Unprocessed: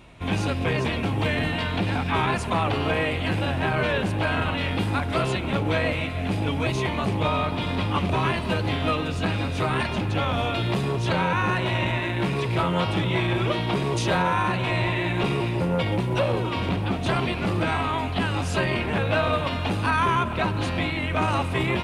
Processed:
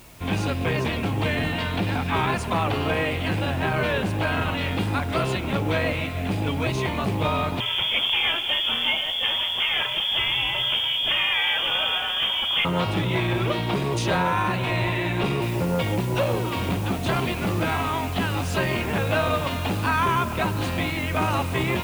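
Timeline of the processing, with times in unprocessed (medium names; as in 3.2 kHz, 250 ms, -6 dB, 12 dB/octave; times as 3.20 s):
7.60–12.65 s: frequency inversion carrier 3.4 kHz
15.42 s: noise floor step -52 dB -44 dB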